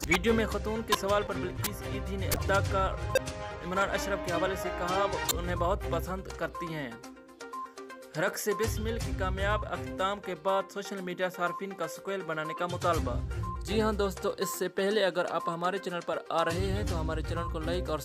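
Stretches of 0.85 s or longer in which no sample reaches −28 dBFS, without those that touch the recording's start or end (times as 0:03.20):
0:06.87–0:08.16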